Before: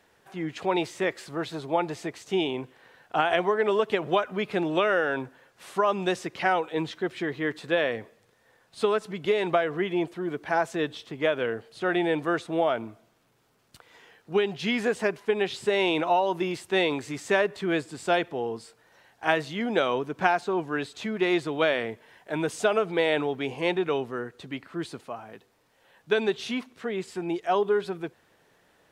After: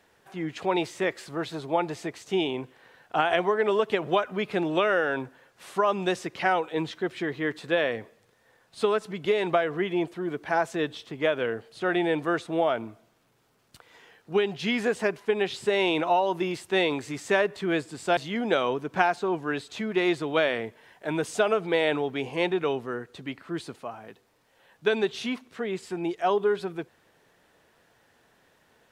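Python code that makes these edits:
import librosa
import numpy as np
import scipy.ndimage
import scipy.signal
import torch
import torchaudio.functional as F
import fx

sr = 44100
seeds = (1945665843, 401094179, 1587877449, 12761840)

y = fx.edit(x, sr, fx.cut(start_s=18.17, length_s=1.25), tone=tone)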